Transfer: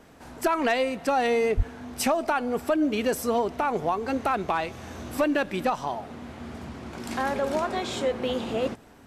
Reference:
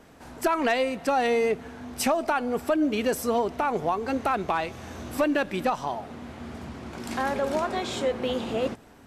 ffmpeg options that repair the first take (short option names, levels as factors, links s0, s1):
-filter_complex "[0:a]asplit=3[s0][s1][s2];[s0]afade=t=out:st=1.56:d=0.02[s3];[s1]highpass=f=140:w=0.5412,highpass=f=140:w=1.3066,afade=t=in:st=1.56:d=0.02,afade=t=out:st=1.68:d=0.02[s4];[s2]afade=t=in:st=1.68:d=0.02[s5];[s3][s4][s5]amix=inputs=3:normalize=0"